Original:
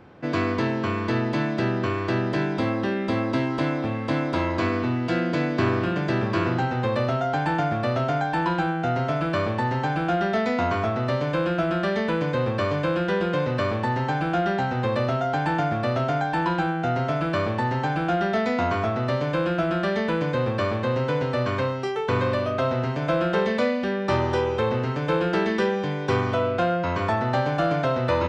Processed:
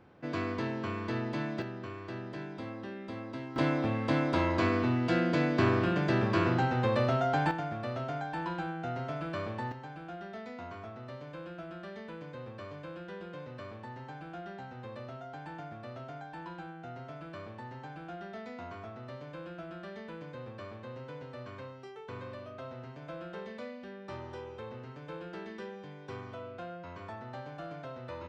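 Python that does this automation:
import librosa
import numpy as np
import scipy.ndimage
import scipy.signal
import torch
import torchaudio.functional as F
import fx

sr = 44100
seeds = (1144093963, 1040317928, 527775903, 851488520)

y = fx.gain(x, sr, db=fx.steps((0.0, -10.0), (1.62, -16.5), (3.56, -4.0), (7.51, -12.0), (9.72, -20.0)))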